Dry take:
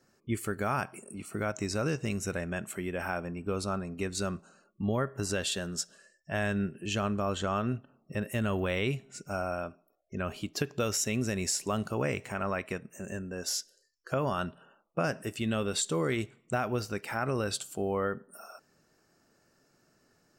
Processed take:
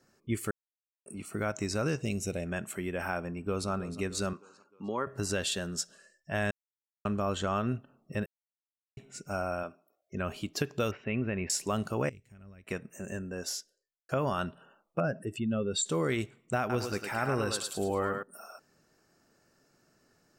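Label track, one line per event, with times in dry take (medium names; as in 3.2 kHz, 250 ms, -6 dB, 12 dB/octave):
0.510000	1.060000	mute
2.020000	2.460000	high-order bell 1.3 kHz -12 dB 1.3 oct
3.290000	3.690000	echo throw 310 ms, feedback 55%, level -13.5 dB
4.330000	5.070000	cabinet simulation 310–7500 Hz, peaks and dips at 660 Hz -9 dB, 980 Hz +6 dB, 1.8 kHz -5 dB, 3.3 kHz -4 dB
6.510000	7.050000	mute
8.260000	8.970000	mute
9.630000	10.140000	high-pass 230 Hz 6 dB/octave
10.910000	11.500000	elliptic low-pass 2.7 kHz, stop band 80 dB
12.090000	12.670000	amplifier tone stack bass-middle-treble 10-0-1
13.340000	14.090000	studio fade out
15.000000	15.860000	spectral contrast enhancement exponent 1.8
16.590000	18.230000	thinning echo 106 ms, feedback 38%, level -3.5 dB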